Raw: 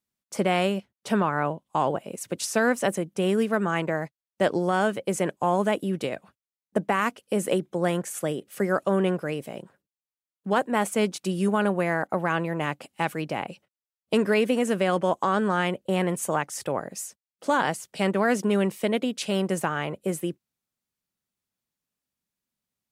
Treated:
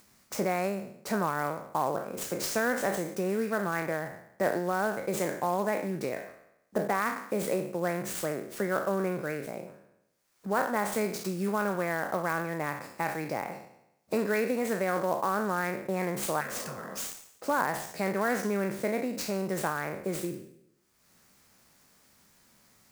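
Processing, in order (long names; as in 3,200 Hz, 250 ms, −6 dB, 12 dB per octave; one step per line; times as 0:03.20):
peak hold with a decay on every bin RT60 0.55 s
Butterworth band-reject 3,200 Hz, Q 1.6
low-shelf EQ 370 Hz −4 dB
in parallel at +2 dB: downward compressor, threshold −32 dBFS, peak gain reduction 14.5 dB
on the sum: healed spectral selection 0:16.43–0:16.89, 200–1,300 Hz after
upward compression, threshold −32 dBFS
converter with an unsteady clock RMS 0.02 ms
level −7.5 dB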